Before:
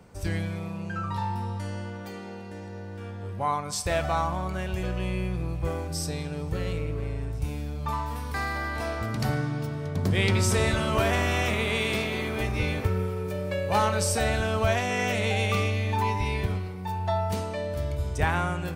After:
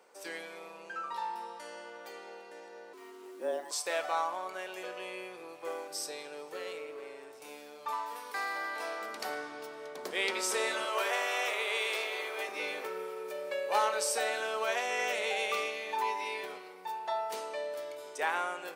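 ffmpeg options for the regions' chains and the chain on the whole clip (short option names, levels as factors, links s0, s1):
-filter_complex "[0:a]asettb=1/sr,asplit=3[s0][s1][s2];[s0]atrim=end=2.934[s3];[s1]atrim=start=2.93:end=3.71,asetpts=PTS-STARTPTS,afade=t=in:d=0.004:c=qsin,afade=t=out:st=0.776:d=0.004:c=qsin,equalizer=f=130:w=1.9:g=-8,afreqshift=-470,acrusher=bits=8:mix=0:aa=0.5[s4];[s2]atrim=start=3.706[s5];[s3][s4]acrossfade=d=0.004:c1=hsin:c2=qsin[s6];[s6][s5]acrossfade=d=0.004:c1=qsin:c2=hsin,asettb=1/sr,asplit=3[s7][s8][s9];[s7]atrim=end=10.854[s10];[s8]atrim=start=10.85:end=12.48,asetpts=PTS-STARTPTS,afade=t=in:d=0.004:c=qsin,afade=t=out:st=1.626:d=0.004:c=qsin,highpass=f=390:w=0.5412,highpass=f=390:w=1.3066,aeval=exprs='val(0)+0.01*(sin(2*PI*60*n/s)+sin(2*PI*2*60*n/s)/2+sin(2*PI*3*60*n/s)/3+sin(2*PI*4*60*n/s)/4+sin(2*PI*5*60*n/s)/5)':c=same[s11];[s9]atrim=start=12.476[s12];[s10][s11]acrossfade=d=0.004:c1=hsin:c2=qsin[s13];[s13][s12]acrossfade=d=0.004:c1=qsin:c2=hsin,highpass=f=410:w=0.5412,highpass=f=410:w=1.3066,bandreject=f=680:w=18,volume=0.631"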